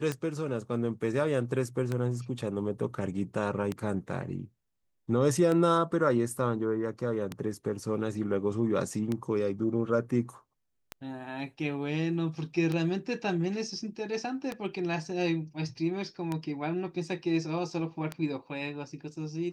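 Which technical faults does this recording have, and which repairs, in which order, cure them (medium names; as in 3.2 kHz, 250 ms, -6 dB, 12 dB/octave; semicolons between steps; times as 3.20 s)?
tick 33 1/3 rpm -18 dBFS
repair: de-click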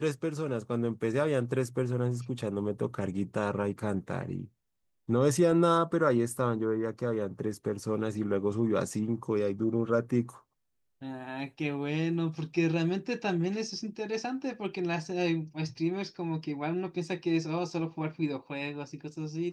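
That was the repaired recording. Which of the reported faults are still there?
nothing left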